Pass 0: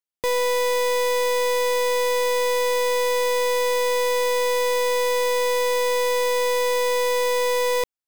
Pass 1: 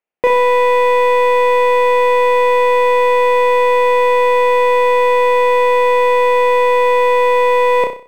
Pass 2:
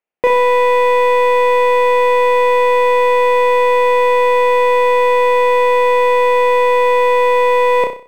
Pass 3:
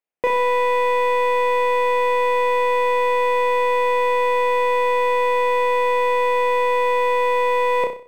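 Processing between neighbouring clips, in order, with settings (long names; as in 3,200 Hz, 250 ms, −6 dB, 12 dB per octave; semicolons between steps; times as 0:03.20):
drawn EQ curve 110 Hz 0 dB, 170 Hz +9 dB, 280 Hz +9 dB, 690 Hz +15 dB, 1,100 Hz +8 dB, 1,600 Hz +8 dB, 2,500 Hz +10 dB, 4,000 Hz −9 dB, 13,000 Hz −13 dB; on a send: flutter between parallel walls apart 5.4 metres, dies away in 0.42 s
no processing that can be heard
hum removal 98.25 Hz, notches 7; level −5.5 dB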